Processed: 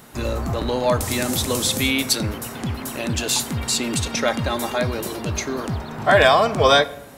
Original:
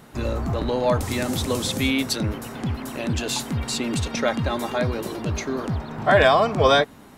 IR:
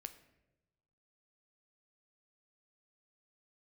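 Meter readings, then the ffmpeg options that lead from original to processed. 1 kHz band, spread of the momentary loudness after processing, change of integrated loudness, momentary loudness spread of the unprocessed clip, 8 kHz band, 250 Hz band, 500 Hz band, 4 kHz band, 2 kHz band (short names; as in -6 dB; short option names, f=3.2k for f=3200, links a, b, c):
+2.0 dB, 12 LU, +2.5 dB, 11 LU, +7.5 dB, 0.0 dB, +1.5 dB, +4.5 dB, +3.0 dB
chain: -filter_complex "[0:a]highshelf=f=6.1k:g=8.5,asplit=2[a][b];[1:a]atrim=start_sample=2205,lowshelf=f=390:g=-6.5[c];[b][c]afir=irnorm=-1:irlink=0,volume=7dB[d];[a][d]amix=inputs=2:normalize=0,volume=-4.5dB"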